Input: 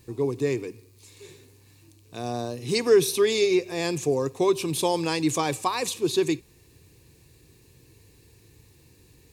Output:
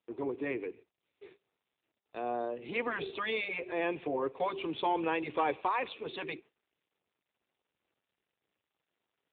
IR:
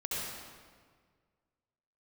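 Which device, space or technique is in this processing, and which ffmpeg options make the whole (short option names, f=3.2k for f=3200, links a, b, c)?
telephone: -filter_complex "[0:a]asplit=3[a][b][c];[a]afade=t=out:st=5.57:d=0.02[d];[b]lowpass=11k,afade=t=in:st=5.57:d=0.02,afade=t=out:st=6.02:d=0.02[e];[c]afade=t=in:st=6.02:d=0.02[f];[d][e][f]amix=inputs=3:normalize=0,afftfilt=real='re*lt(hypot(re,im),0.562)':imag='im*lt(hypot(re,im),0.562)':win_size=1024:overlap=0.75,agate=range=-35dB:threshold=-46dB:ratio=16:detection=peak,highpass=400,lowpass=3k,asoftclip=type=tanh:threshold=-18dB" -ar 8000 -c:a libopencore_amrnb -b:a 7400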